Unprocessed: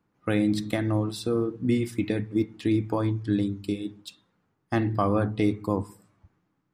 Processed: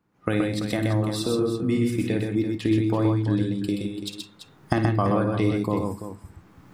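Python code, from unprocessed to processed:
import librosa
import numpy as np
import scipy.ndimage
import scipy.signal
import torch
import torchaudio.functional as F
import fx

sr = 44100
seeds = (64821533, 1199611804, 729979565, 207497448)

p1 = fx.recorder_agc(x, sr, target_db=-19.5, rise_db_per_s=27.0, max_gain_db=30)
y = p1 + fx.echo_multitap(p1, sr, ms=(55, 126, 160, 337), db=(-10.0, -3.5, -17.0, -10.5), dry=0)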